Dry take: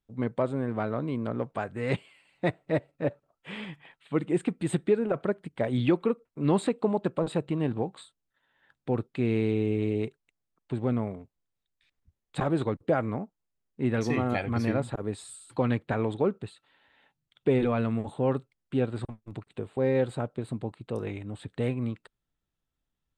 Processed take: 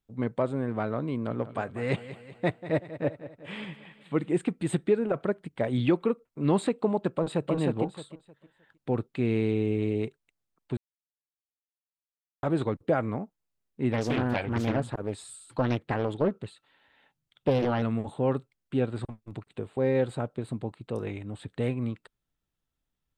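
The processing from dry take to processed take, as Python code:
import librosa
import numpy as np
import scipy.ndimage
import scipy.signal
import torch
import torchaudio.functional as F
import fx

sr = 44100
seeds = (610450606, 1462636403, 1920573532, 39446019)

y = fx.echo_feedback(x, sr, ms=190, feedback_pct=51, wet_db=-14, at=(1.11, 4.31))
y = fx.echo_throw(y, sr, start_s=7.11, length_s=0.42, ms=310, feedback_pct=25, wet_db=-2.0)
y = fx.doppler_dist(y, sr, depth_ms=0.72, at=(13.92, 17.82))
y = fx.edit(y, sr, fx.silence(start_s=10.77, length_s=1.66), tone=tone)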